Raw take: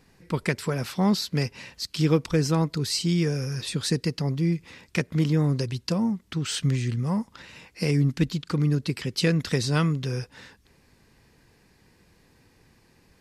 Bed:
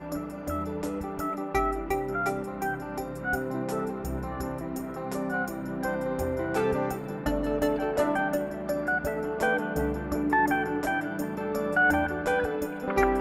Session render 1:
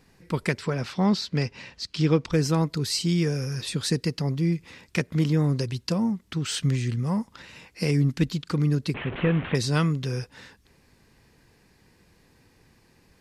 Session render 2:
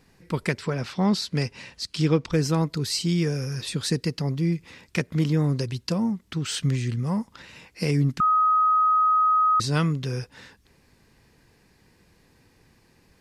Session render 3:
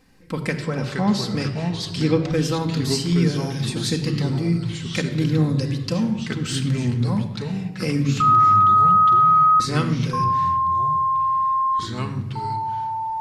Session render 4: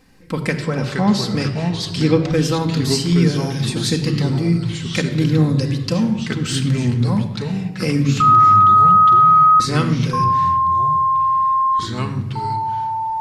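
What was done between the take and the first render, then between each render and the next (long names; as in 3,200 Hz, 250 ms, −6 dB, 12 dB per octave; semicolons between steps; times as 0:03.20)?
0:00.58–0:02.33: low-pass filter 5,700 Hz; 0:08.94–0:09.55: linear delta modulator 16 kbit/s, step −28.5 dBFS
0:01.13–0:02.08: parametric band 10,000 Hz +11.5 dB; 0:08.20–0:09.60: beep over 1,260 Hz −16.5 dBFS
rectangular room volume 3,700 cubic metres, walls furnished, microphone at 2.1 metres; delay with pitch and tempo change per echo 378 ms, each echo −3 semitones, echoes 2, each echo −6 dB
level +4 dB; brickwall limiter −3 dBFS, peak gain reduction 1 dB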